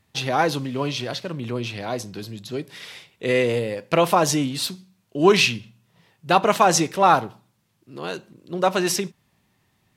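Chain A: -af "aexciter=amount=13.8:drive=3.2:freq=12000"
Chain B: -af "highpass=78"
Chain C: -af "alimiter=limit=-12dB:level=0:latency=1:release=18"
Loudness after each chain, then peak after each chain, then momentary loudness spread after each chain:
−21.0, −21.5, −25.0 LKFS; −2.5, −2.0, −12.0 dBFS; 17, 17, 14 LU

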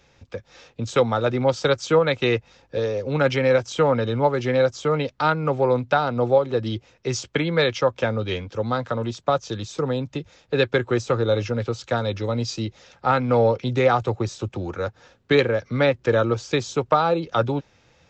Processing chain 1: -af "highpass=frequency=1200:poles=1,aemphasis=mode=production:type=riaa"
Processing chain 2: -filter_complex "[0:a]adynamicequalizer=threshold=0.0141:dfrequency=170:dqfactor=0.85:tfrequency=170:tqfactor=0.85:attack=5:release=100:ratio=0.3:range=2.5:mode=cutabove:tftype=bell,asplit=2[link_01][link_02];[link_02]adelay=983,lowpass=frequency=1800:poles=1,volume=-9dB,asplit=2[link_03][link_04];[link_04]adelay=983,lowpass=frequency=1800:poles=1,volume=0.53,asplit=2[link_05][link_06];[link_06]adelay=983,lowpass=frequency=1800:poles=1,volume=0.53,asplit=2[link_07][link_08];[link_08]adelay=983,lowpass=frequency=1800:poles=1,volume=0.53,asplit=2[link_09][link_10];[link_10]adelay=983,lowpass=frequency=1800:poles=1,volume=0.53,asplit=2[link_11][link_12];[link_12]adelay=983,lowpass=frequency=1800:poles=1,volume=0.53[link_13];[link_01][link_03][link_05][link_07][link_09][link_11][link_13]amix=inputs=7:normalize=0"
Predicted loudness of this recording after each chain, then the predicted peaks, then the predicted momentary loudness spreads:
−27.0, −23.0 LKFS; −3.5, −6.0 dBFS; 12, 8 LU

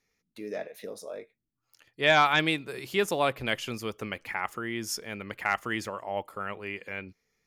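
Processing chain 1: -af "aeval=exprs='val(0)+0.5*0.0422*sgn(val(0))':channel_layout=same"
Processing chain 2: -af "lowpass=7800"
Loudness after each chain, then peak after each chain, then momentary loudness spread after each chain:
−26.5, −29.5 LKFS; −11.5, −12.0 dBFS; 11, 18 LU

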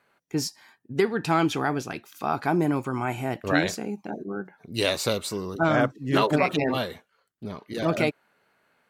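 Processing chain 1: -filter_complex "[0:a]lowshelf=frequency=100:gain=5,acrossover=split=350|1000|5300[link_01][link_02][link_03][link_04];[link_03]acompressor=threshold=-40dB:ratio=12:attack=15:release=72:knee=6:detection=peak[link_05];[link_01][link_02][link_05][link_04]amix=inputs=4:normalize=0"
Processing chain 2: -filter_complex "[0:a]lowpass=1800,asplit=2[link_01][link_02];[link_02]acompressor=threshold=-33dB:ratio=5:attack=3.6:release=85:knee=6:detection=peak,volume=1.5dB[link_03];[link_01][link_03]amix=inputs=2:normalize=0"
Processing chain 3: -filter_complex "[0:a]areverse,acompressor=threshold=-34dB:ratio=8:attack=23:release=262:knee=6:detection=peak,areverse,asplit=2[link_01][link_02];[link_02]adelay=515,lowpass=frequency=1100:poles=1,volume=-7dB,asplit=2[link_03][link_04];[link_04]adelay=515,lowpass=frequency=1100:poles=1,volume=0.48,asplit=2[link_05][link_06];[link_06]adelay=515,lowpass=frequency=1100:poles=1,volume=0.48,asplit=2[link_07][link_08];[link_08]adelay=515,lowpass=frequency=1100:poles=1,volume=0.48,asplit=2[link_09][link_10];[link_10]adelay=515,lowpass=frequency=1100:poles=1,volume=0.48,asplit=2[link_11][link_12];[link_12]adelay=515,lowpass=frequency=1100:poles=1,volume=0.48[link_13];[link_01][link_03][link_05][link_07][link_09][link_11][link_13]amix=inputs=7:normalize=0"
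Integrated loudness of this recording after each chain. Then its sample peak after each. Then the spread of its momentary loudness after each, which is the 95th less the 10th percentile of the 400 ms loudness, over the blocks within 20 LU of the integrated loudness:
−27.0, −24.5, −37.0 LKFS; −9.0, −7.5, −19.0 dBFS; 11, 11, 7 LU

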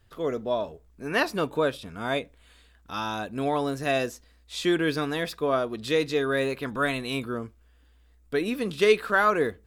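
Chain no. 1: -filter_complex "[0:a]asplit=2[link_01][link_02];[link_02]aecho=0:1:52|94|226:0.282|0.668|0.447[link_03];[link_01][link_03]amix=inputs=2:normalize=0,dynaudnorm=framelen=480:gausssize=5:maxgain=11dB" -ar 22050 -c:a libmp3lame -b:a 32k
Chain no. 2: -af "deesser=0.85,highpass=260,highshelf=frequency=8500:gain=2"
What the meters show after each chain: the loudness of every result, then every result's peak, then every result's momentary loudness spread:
−18.0, −28.5 LKFS; −2.5, −11.0 dBFS; 12, 12 LU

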